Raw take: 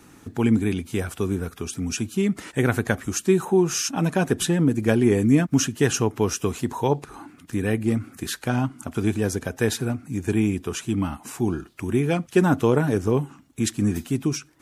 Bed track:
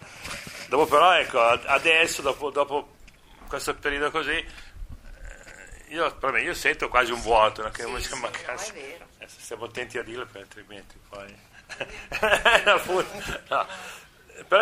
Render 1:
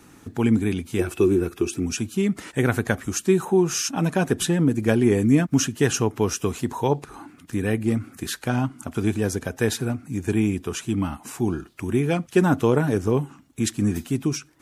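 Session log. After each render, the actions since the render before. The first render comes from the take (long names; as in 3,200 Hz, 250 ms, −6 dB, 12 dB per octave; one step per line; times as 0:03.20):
0:00.99–0:01.86: hollow resonant body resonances 350/2,600 Hz, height 18 dB, ringing for 85 ms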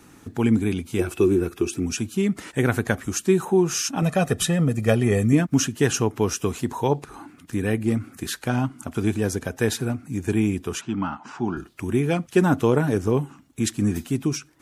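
0:00.61–0:01.12: notch filter 1,800 Hz
0:04.02–0:05.33: comb filter 1.6 ms
0:10.81–0:11.57: loudspeaker in its box 150–5,000 Hz, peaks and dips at 320 Hz −3 dB, 470 Hz −6 dB, 910 Hz +6 dB, 1,400 Hz +8 dB, 2,200 Hz −4 dB, 3,900 Hz −6 dB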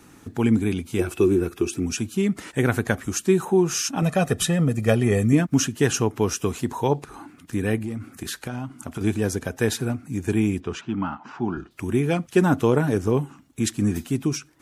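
0:07.78–0:09.01: downward compressor 5 to 1, threshold −26 dBFS
0:10.60–0:11.71: high-frequency loss of the air 130 metres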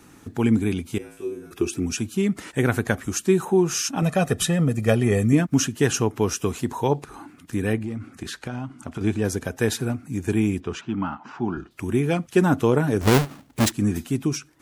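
0:00.98–0:01.51: tuned comb filter 54 Hz, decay 0.6 s, harmonics odd, mix 100%
0:07.73–0:09.25: high-frequency loss of the air 51 metres
0:13.01–0:13.72: each half-wave held at its own peak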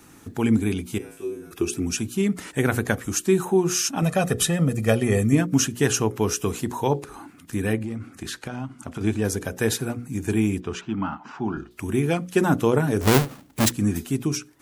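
high-shelf EQ 8,700 Hz +6 dB
mains-hum notches 60/120/180/240/300/360/420/480/540 Hz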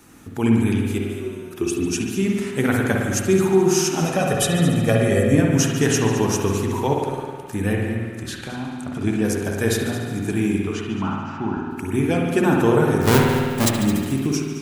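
on a send: echo machine with several playback heads 72 ms, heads all three, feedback 48%, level −16 dB
on the sum: spring reverb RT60 1.6 s, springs 52 ms, chirp 30 ms, DRR 0 dB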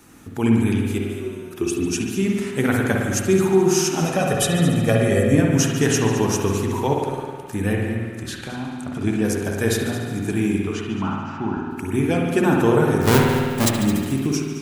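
no processing that can be heard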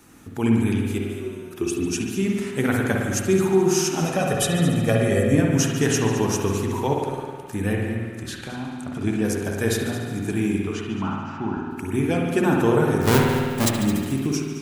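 level −2 dB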